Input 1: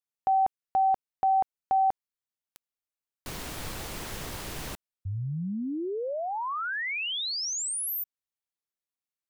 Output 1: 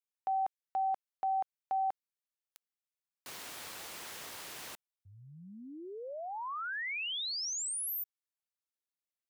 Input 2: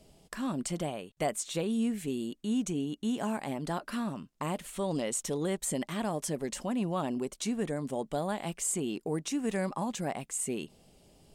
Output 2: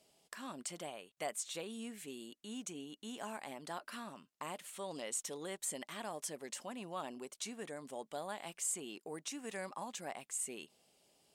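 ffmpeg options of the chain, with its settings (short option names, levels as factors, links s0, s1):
-af "highpass=f=860:p=1,volume=0.562"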